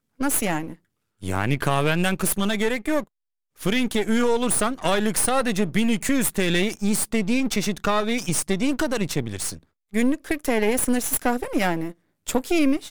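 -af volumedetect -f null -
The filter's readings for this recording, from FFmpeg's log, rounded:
mean_volume: -23.0 dB
max_volume: -5.6 dB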